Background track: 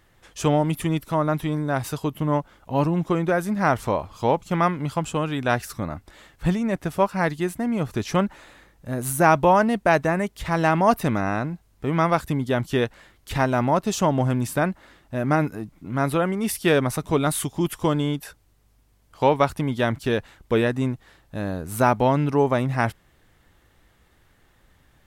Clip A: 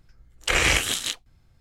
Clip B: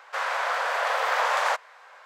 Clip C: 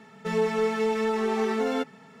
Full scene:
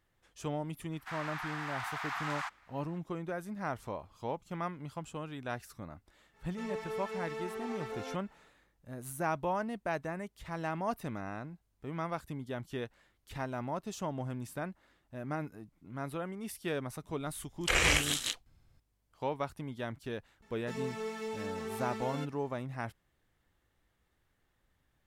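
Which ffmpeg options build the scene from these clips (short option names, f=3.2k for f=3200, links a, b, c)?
-filter_complex "[3:a]asplit=2[a][b];[0:a]volume=-16.5dB[c];[2:a]afreqshift=220[d];[a]equalizer=f=230:t=o:w=0.77:g=-10.5[e];[b]highshelf=f=4k:g=9.5[f];[d]atrim=end=2.05,asetpts=PTS-STARTPTS,volume=-14dB,afade=t=in:d=0.004:c=hsin,afade=t=out:st=2.046:d=0.004:c=hsin,adelay=930[g];[e]atrim=end=2.2,asetpts=PTS-STARTPTS,volume=-12.5dB,afade=t=in:d=0.05,afade=t=out:st=2.15:d=0.05,adelay=6320[h];[1:a]atrim=end=1.6,asetpts=PTS-STARTPTS,volume=-6.5dB,afade=t=in:d=0.004:c=hsin,afade=t=out:st=1.596:d=0.004:c=hsin,adelay=17200[i];[f]atrim=end=2.2,asetpts=PTS-STARTPTS,volume=-14dB,afade=t=in:d=0.004:c=hsin,afade=t=out:st=2.196:d=0.004:c=hsin,adelay=20420[j];[c][g][h][i][j]amix=inputs=5:normalize=0"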